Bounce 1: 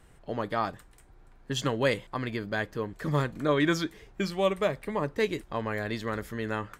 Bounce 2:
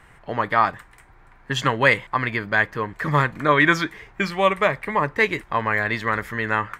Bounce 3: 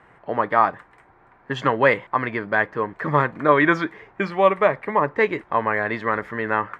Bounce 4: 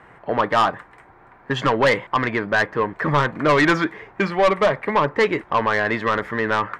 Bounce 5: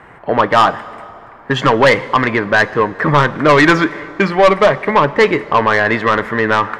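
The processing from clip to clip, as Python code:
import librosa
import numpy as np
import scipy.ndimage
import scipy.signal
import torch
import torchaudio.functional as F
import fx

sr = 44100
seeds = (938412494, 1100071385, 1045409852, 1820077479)

y1 = fx.graphic_eq(x, sr, hz=(125, 1000, 2000), db=(4, 9, 12))
y1 = F.gain(torch.from_numpy(y1), 2.0).numpy()
y2 = fx.bandpass_q(y1, sr, hz=530.0, q=0.56)
y2 = F.gain(torch.from_numpy(y2), 3.5).numpy()
y3 = 10.0 ** (-16.0 / 20.0) * np.tanh(y2 / 10.0 ** (-16.0 / 20.0))
y3 = F.gain(torch.from_numpy(y3), 5.0).numpy()
y4 = fx.rev_plate(y3, sr, seeds[0], rt60_s=2.7, hf_ratio=0.65, predelay_ms=0, drr_db=16.5)
y4 = F.gain(torch.from_numpy(y4), 7.0).numpy()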